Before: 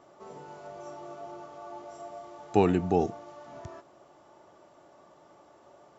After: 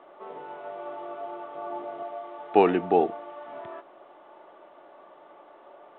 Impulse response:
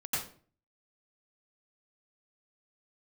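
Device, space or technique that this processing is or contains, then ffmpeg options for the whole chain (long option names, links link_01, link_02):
telephone: -filter_complex "[0:a]asettb=1/sr,asplit=3[link_01][link_02][link_03];[link_01]atrim=end=1.554[link_04];[link_02]atrim=start=1.55:end=2.03,asetpts=PTS-STARTPTS,afade=type=in:duration=0.004:curve=qsin,afade=type=out:start_time=0.476:duration=0.004:curve=qsin,lowshelf=frequency=300:gain=12[link_05];[link_03]atrim=start=2.026[link_06];[link_04][link_05]acrossfade=duration=0.004:curve1=hsin:curve2=qsin[link_07];[link_07][link_06]acrossfade=duration=0.004:curve1=qsin:curve2=hsin,highpass=370,lowpass=3400,volume=6.5dB" -ar 8000 -c:a pcm_mulaw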